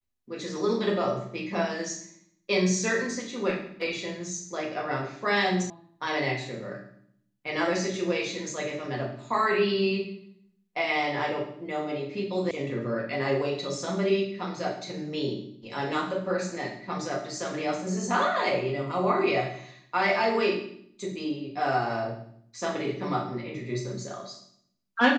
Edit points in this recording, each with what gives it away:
5.70 s: sound stops dead
12.51 s: sound stops dead

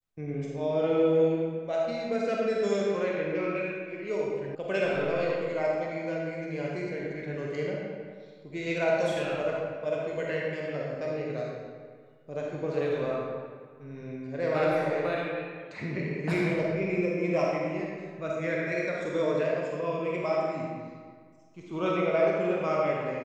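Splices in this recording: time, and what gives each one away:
4.55 s: sound stops dead

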